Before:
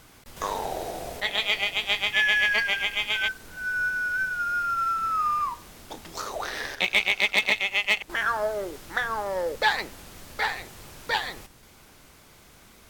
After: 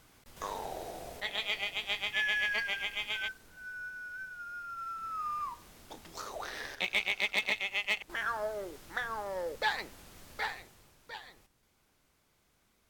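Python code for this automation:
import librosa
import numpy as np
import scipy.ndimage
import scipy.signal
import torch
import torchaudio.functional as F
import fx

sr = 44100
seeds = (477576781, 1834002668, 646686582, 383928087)

y = fx.gain(x, sr, db=fx.line((3.13, -9.0), (3.8, -16.0), (4.67, -16.0), (5.62, -8.5), (10.44, -8.5), (10.98, -19.0)))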